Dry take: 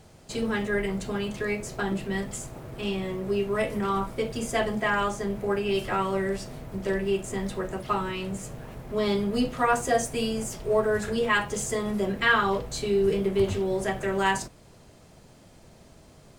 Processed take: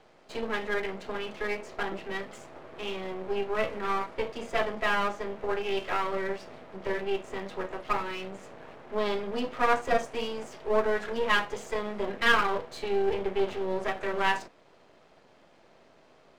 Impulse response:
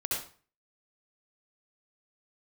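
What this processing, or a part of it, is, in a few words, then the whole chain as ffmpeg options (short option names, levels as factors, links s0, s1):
crystal radio: -af "highpass=370,lowpass=3100,aeval=exprs='if(lt(val(0),0),0.251*val(0),val(0))':c=same,volume=1.33"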